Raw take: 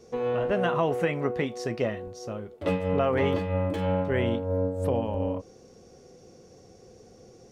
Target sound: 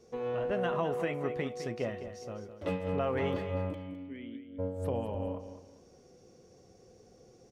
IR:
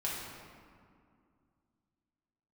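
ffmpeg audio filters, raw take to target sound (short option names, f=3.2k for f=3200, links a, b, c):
-filter_complex "[0:a]asplit=3[a][b][c];[a]afade=t=out:st=3.73:d=0.02[d];[b]asplit=3[e][f][g];[e]bandpass=f=270:t=q:w=8,volume=0dB[h];[f]bandpass=f=2.29k:t=q:w=8,volume=-6dB[i];[g]bandpass=f=3.01k:t=q:w=8,volume=-9dB[j];[h][i][j]amix=inputs=3:normalize=0,afade=t=in:st=3.73:d=0.02,afade=t=out:st=4.58:d=0.02[k];[c]afade=t=in:st=4.58:d=0.02[l];[d][k][l]amix=inputs=3:normalize=0,aecho=1:1:208|416|624:0.282|0.0846|0.0254,volume=-7dB"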